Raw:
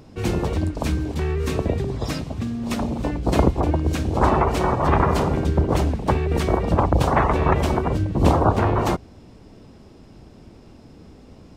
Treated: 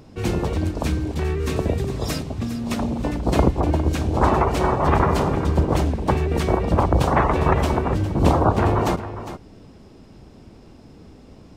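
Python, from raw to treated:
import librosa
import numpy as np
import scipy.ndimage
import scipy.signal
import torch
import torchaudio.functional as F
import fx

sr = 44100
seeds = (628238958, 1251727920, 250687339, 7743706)

y = fx.high_shelf(x, sr, hz=7400.0, db=10.5, at=(1.56, 2.23))
y = y + 10.0 ** (-12.0 / 20.0) * np.pad(y, (int(406 * sr / 1000.0), 0))[:len(y)]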